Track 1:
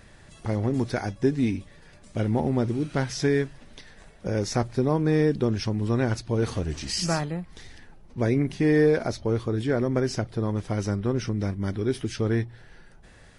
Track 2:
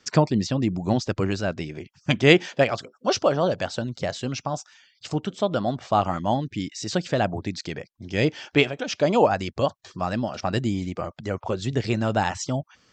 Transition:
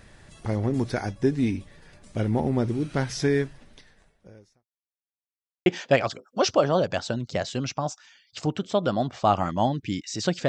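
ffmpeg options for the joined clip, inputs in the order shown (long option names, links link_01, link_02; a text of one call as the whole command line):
ffmpeg -i cue0.wav -i cue1.wav -filter_complex "[0:a]apad=whole_dur=10.48,atrim=end=10.48,asplit=2[link_01][link_02];[link_01]atrim=end=4.67,asetpts=PTS-STARTPTS,afade=type=out:start_time=3.46:duration=1.21:curve=qua[link_03];[link_02]atrim=start=4.67:end=5.66,asetpts=PTS-STARTPTS,volume=0[link_04];[1:a]atrim=start=2.34:end=7.16,asetpts=PTS-STARTPTS,afade=type=in:duration=0.004:curve=hsin[link_05];[link_03][link_04][link_05]concat=n=3:v=0:a=1" out.wav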